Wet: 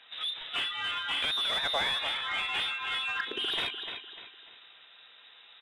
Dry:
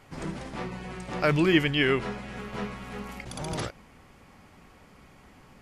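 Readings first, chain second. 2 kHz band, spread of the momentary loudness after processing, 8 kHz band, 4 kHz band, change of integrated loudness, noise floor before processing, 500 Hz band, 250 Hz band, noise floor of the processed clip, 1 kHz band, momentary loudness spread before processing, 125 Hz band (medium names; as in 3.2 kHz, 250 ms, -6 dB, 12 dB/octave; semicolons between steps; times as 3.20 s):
-0.5 dB, 11 LU, -4.5 dB, +8.0 dB, -1.0 dB, -55 dBFS, -13.0 dB, -23.0 dB, -56 dBFS, -0.5 dB, 17 LU, -24.5 dB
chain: spectral noise reduction 19 dB; compression 3:1, threshold -43 dBFS, peak gain reduction 19 dB; sine folder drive 10 dB, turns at -24 dBFS; frequency inversion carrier 3.8 kHz; feedback delay 298 ms, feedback 35%, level -11 dB; overdrive pedal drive 15 dB, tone 1.5 kHz, clips at -17.5 dBFS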